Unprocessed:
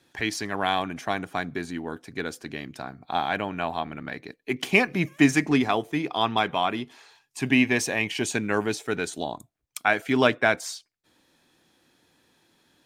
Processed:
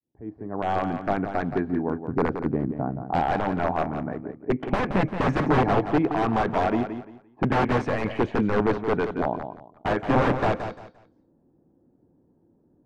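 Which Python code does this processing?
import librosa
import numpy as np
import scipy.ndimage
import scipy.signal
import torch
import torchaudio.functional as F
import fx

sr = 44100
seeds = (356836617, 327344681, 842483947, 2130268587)

p1 = fx.fade_in_head(x, sr, length_s=1.05)
p2 = fx.env_lowpass(p1, sr, base_hz=390.0, full_db=-19.5)
p3 = fx.low_shelf(p2, sr, hz=430.0, db=7.0, at=(1.99, 3.03))
p4 = (np.mod(10.0 ** (18.5 / 20.0) * p3 + 1.0, 2.0) - 1.0) / 10.0 ** (18.5 / 20.0)
p5 = scipy.signal.sosfilt(scipy.signal.butter(2, 1100.0, 'lowpass', fs=sr, output='sos'), p4)
p6 = p5 + fx.echo_feedback(p5, sr, ms=173, feedback_pct=25, wet_db=-9, dry=0)
y = p6 * 10.0 ** (7.0 / 20.0)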